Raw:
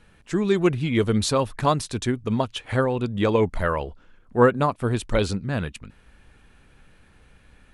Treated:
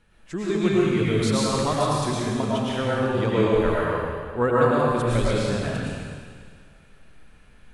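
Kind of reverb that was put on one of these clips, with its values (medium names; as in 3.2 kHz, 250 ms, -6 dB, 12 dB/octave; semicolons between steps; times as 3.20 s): algorithmic reverb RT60 1.9 s, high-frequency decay 1×, pre-delay 70 ms, DRR -7 dB; trim -7 dB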